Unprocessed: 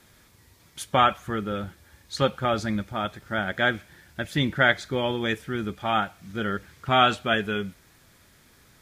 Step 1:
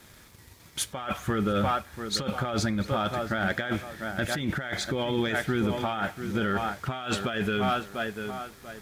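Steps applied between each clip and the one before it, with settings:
tape delay 690 ms, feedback 32%, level −12.5 dB, low-pass 2,100 Hz
compressor whose output falls as the input rises −30 dBFS, ratio −1
leveller curve on the samples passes 1
level −1.5 dB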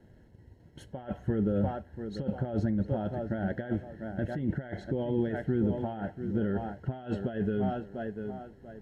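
moving average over 37 samples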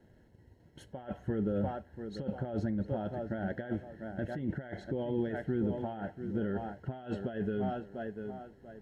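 low-shelf EQ 210 Hz −4.5 dB
level −2 dB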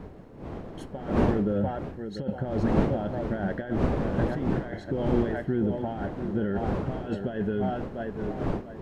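wind on the microphone 390 Hz −37 dBFS
level +5.5 dB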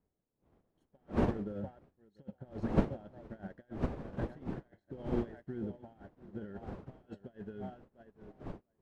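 in parallel at −8 dB: dead-zone distortion −43 dBFS
on the sum: expander for the loud parts 2.5 to 1, over −39 dBFS
level −6 dB

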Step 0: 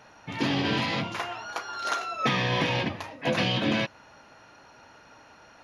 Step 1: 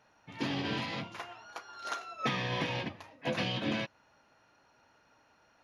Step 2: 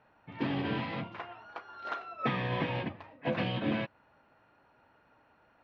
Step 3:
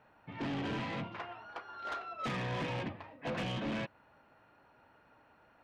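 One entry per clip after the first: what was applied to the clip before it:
expander for the loud parts 1.5 to 1, over −37 dBFS; level −6 dB
high-frequency loss of the air 380 metres; level +3 dB
soft clipping −34 dBFS, distortion −9 dB; level +1 dB

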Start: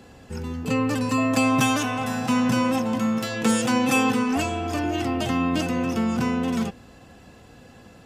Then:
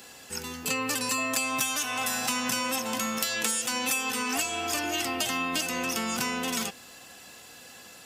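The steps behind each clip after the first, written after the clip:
spectral tilt +4.5 dB per octave
downward compressor 10 to 1, threshold −25 dBFS, peak gain reduction 13.5 dB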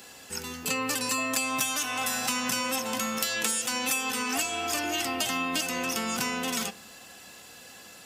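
convolution reverb RT60 0.75 s, pre-delay 5 ms, DRR 17 dB

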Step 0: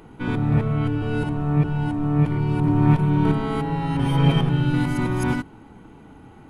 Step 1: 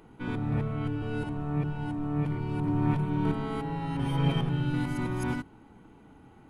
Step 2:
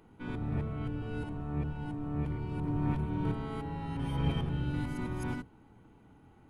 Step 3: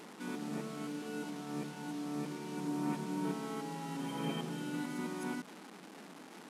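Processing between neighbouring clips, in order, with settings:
mains-hum notches 50/100/150 Hz; level −8 dB
sub-octave generator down 1 octave, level −3 dB; level −6 dB
linear delta modulator 64 kbit/s, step −43 dBFS; linear-phase brick-wall high-pass 160 Hz; level −1 dB

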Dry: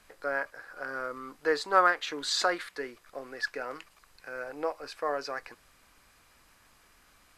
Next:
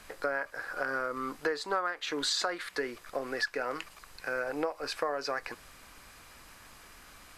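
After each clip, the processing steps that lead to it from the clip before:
downward compressor 8 to 1, threshold −37 dBFS, peak gain reduction 20 dB
level +8.5 dB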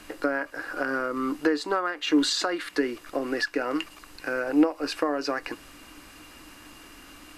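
hollow resonant body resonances 300/2,800 Hz, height 16 dB, ringing for 65 ms
level +3.5 dB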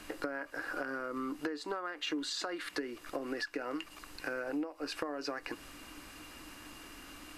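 downward compressor 6 to 1, threshold −32 dBFS, peak gain reduction 16 dB
level −2.5 dB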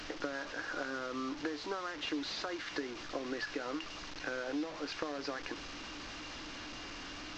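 linear delta modulator 32 kbit/s, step −38 dBFS
level −1 dB

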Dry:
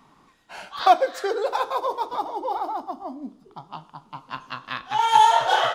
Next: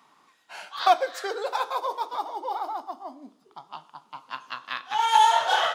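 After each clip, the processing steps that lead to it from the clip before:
high-pass filter 850 Hz 6 dB per octave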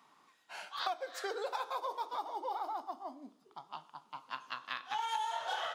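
downward compressor 8 to 1, threshold −28 dBFS, peak gain reduction 14.5 dB
level −5.5 dB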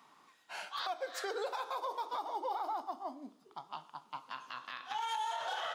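brickwall limiter −31.5 dBFS, peak gain reduction 10.5 dB
level +2.5 dB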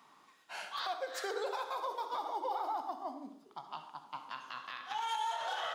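convolution reverb RT60 0.50 s, pre-delay 52 ms, DRR 8.5 dB

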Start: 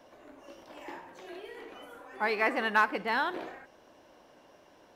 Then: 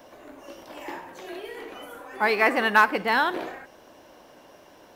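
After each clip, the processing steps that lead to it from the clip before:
high-shelf EQ 11,000 Hz +10.5 dB
level +7 dB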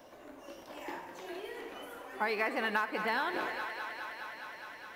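feedback echo with a high-pass in the loop 207 ms, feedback 85%, high-pass 330 Hz, level −13 dB
downward compressor 6 to 1, threshold −23 dBFS, peak gain reduction 10.5 dB
level −5.5 dB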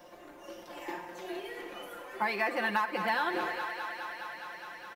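comb filter 5.7 ms, depth 76%

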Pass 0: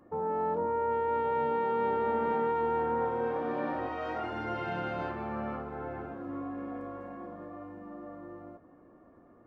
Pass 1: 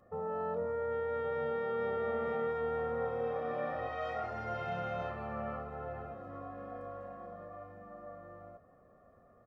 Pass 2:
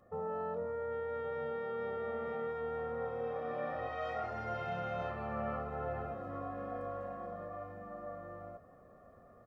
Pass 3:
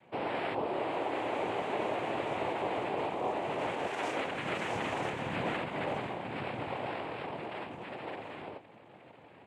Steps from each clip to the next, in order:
comb filter 1.6 ms, depth 81%; level −5 dB
speech leveller within 5 dB 0.5 s; level −1.5 dB
cochlear-implant simulation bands 4; level +4.5 dB

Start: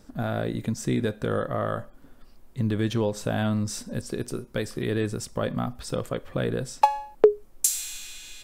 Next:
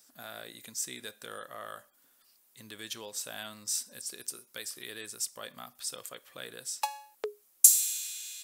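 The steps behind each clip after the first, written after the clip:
first difference
level +4 dB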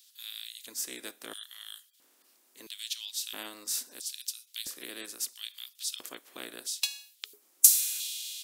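ceiling on every frequency bin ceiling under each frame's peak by 15 dB
auto-filter high-pass square 0.75 Hz 300–3,400 Hz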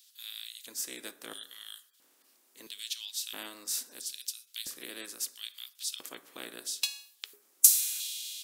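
convolution reverb RT60 0.90 s, pre-delay 3 ms, DRR 12 dB
level −1 dB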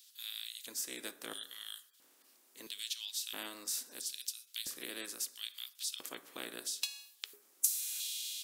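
downward compressor 2 to 1, threshold −37 dBFS, peak gain reduction 13 dB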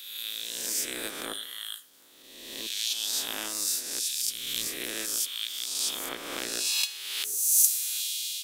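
peak hold with a rise ahead of every peak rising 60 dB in 1.34 s
amplitude modulation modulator 280 Hz, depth 25%
level +7.5 dB

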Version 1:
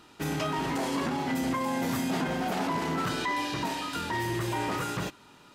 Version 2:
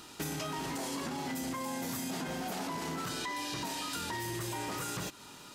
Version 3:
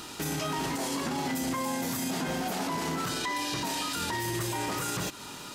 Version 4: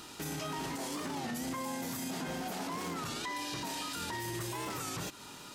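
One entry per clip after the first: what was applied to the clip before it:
bass and treble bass 0 dB, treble +10 dB; in parallel at −0.5 dB: brickwall limiter −27 dBFS, peak gain reduction 10 dB; on the sum: downward compressor 6 to 1, threshold −31 dBFS, peak gain reduction 9 dB; level −3.5 dB
brickwall limiter −31.5 dBFS, peak gain reduction 6 dB; level +8.5 dB
wow of a warped record 33 1/3 rpm, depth 160 cents; level −6.5 dB

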